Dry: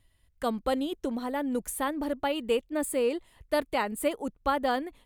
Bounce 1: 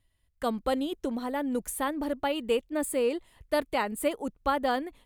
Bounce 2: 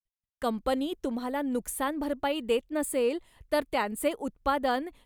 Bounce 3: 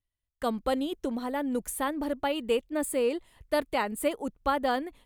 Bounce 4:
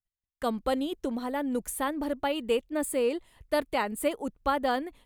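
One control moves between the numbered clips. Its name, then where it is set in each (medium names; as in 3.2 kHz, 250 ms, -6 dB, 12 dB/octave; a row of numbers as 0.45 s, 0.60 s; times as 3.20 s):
gate, range: -6 dB, -54 dB, -22 dB, -34 dB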